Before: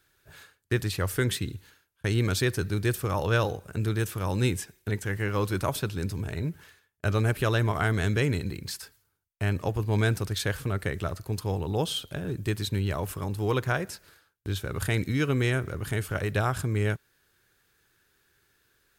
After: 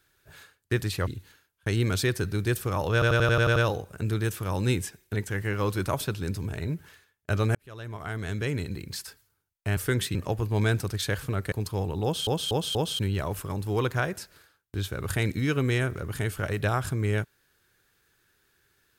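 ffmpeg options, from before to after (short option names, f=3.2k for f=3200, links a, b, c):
-filter_complex "[0:a]asplit=17[a][b][c][d][e][f][g][h][i][j][k][l][m][n][o][p][q];[a]atrim=end=1.072[r];[b]atrim=start=1.448:end=3.402[s];[c]atrim=start=3.308:end=3.402[t];[d]atrim=start=3.308:end=3.402[u];[e]atrim=start=3.308:end=3.402[v];[f]atrim=start=3.308:end=3.402[w];[g]atrim=start=3.308:end=3.402[x];[h]atrim=start=3.308:end=3.402[y];[i]atrim=start=3.308:end=7.3,asetpts=PTS-STARTPTS,afade=t=out:st=3.988:d=0.004:c=hsin[z];[j]atrim=start=7.3:end=9.522,asetpts=PTS-STARTPTS,afade=t=in:d=1.48[aa];[k]atrim=start=1.068:end=1.452[ab];[l]atrim=start=9.518:end=10.892[ac];[m]atrim=start=11.238:end=11.992[ad];[n]atrim=start=11.748:end=11.992[ae];[o]atrim=start=11.748:end=11.992[af];[p]atrim=start=11.748:end=11.992[ag];[q]atrim=start=12.708[ah];[r][s]acrossfade=d=0.004:c1=hsin:c2=hsin[ai];[ai][t]acrossfade=d=0.004:c1=hsin:c2=hsin[aj];[aj][u]acrossfade=d=0.004:c1=hsin:c2=hsin[ak];[ak][v]acrossfade=d=0.004:c1=hsin:c2=hsin[al];[al][w]acrossfade=d=0.004:c1=hsin:c2=hsin[am];[am][x]acrossfade=d=0.004:c1=hsin:c2=hsin[an];[an][y]acrossfade=d=0.004:c1=hsin:c2=hsin[ao];[z][aa]concat=n=2:v=0:a=1[ap];[ao][ap]acrossfade=d=0.004:c1=hsin:c2=hsin[aq];[aq][ab]acrossfade=d=0.004:c1=hsin:c2=hsin[ar];[ar][ac]acrossfade=d=0.004:c1=hsin:c2=hsin[as];[as][ad]acrossfade=d=0.004:c1=hsin:c2=hsin[at];[at][ae]acrossfade=d=0.004:c1=hsin:c2=hsin[au];[au][af]acrossfade=d=0.004:c1=hsin:c2=hsin[av];[av][ag]acrossfade=d=0.004:c1=hsin:c2=hsin[aw];[aw][ah]acrossfade=d=0.004:c1=hsin:c2=hsin"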